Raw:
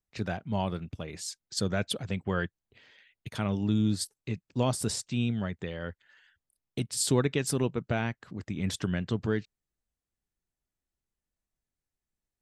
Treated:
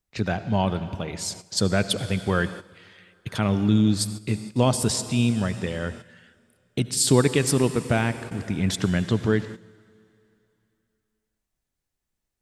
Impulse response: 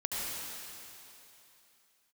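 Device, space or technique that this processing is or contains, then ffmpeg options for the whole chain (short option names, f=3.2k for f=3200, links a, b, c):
keyed gated reverb: -filter_complex "[0:a]asplit=3[a][b][c];[1:a]atrim=start_sample=2205[d];[b][d]afir=irnorm=-1:irlink=0[e];[c]apad=whole_len=547622[f];[e][f]sidechaingate=range=-12dB:threshold=-49dB:ratio=16:detection=peak,volume=-15dB[g];[a][g]amix=inputs=2:normalize=0,volume=6dB"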